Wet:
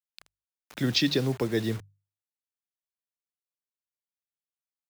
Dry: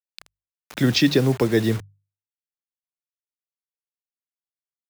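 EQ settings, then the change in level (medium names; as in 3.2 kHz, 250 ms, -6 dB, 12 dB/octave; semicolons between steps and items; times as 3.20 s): dynamic bell 4.1 kHz, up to +6 dB, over -36 dBFS, Q 1.3; -8.0 dB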